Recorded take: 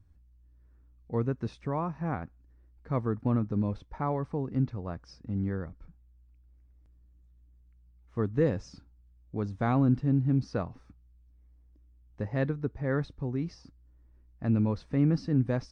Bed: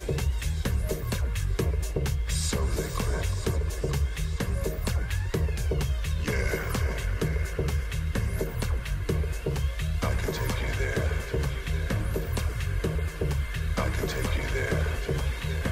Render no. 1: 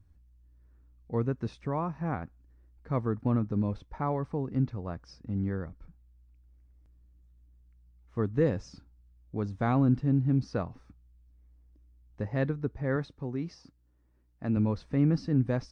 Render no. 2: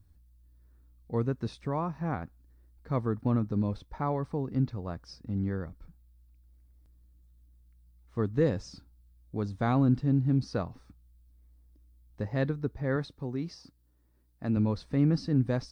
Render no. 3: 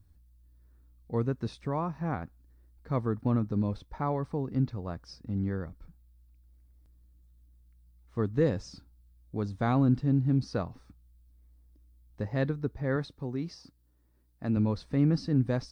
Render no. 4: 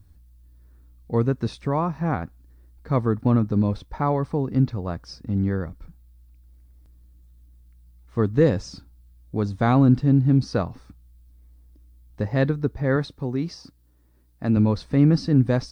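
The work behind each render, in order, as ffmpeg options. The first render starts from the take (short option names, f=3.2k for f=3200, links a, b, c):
-filter_complex "[0:a]asettb=1/sr,asplit=3[a][b][c];[a]atrim=end=12.964[d];[b]atrim=start=12.96:end=14.57,asetpts=PTS-STARTPTS,afade=t=in:d=0.004:c=qsin,afade=t=out:st=1.606:d=0.004:c=qsin,highpass=f=160:p=1[e];[c]atrim=start=14.566[f];[d][e]acrossfade=d=0.004:c1=hsin:c2=qsin[g];[g][f]acrossfade=d=0.004:c1=qsin:c2=hsin"
-af "aexciter=amount=2:drive=4.6:freq=3.6k"
-af anull
-af "volume=8dB"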